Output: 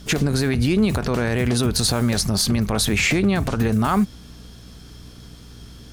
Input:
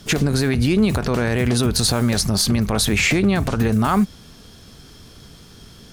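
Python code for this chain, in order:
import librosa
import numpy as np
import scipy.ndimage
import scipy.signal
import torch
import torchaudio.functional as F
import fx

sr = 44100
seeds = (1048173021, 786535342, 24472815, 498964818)

y = fx.add_hum(x, sr, base_hz=60, snr_db=22)
y = F.gain(torch.from_numpy(y), -1.5).numpy()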